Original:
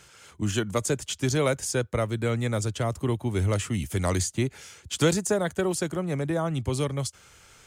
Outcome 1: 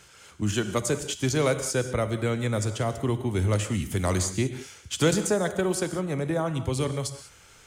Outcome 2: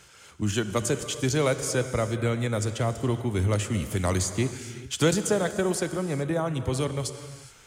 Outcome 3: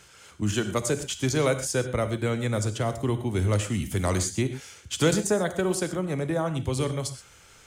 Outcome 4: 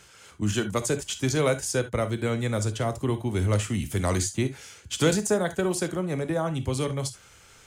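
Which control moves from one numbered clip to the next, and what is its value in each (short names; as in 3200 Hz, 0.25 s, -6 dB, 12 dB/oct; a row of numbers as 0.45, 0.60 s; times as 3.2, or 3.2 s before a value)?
non-linear reverb, gate: 220, 450, 150, 90 ms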